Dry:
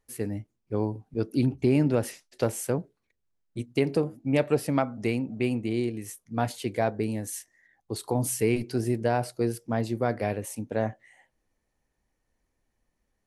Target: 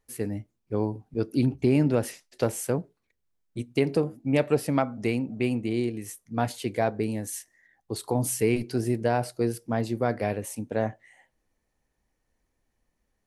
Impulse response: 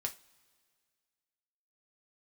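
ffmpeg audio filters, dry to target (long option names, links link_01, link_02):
-filter_complex "[0:a]asplit=2[link_01][link_02];[1:a]atrim=start_sample=2205,atrim=end_sample=6174,asetrate=39249,aresample=44100[link_03];[link_02][link_03]afir=irnorm=-1:irlink=0,volume=-20dB[link_04];[link_01][link_04]amix=inputs=2:normalize=0"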